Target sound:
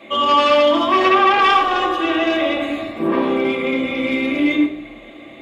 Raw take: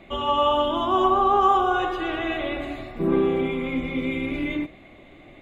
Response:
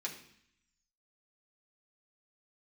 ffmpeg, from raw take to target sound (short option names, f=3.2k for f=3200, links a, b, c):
-filter_complex "[0:a]aeval=exprs='0.422*sin(PI/2*2.82*val(0)/0.422)':c=same[a];[1:a]atrim=start_sample=2205,asetrate=66150,aresample=44100[b];[a][b]afir=irnorm=-1:irlink=0"